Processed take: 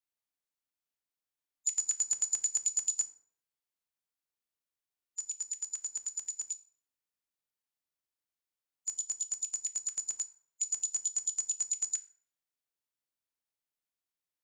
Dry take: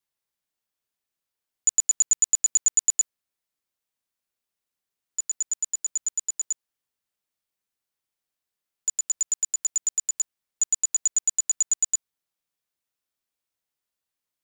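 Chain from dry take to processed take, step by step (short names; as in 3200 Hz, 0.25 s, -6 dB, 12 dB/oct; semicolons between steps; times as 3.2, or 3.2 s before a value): bin magnitudes rounded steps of 30 dB; FDN reverb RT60 0.61 s, low-frequency decay 0.95×, high-frequency decay 0.6×, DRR 9.5 dB; gain -8 dB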